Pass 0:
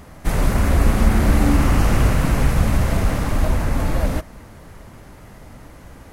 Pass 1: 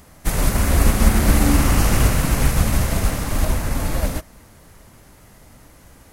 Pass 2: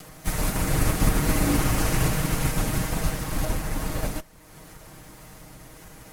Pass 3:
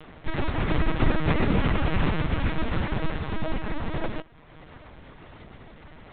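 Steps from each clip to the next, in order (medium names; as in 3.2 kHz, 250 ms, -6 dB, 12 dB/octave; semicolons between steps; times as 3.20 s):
treble shelf 3.9 kHz +11 dB; upward expansion 1.5:1, over -26 dBFS; trim +1.5 dB
comb filter that takes the minimum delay 6.4 ms; upward compressor, threshold -31 dBFS; trim -4.5 dB
LPC vocoder at 8 kHz pitch kept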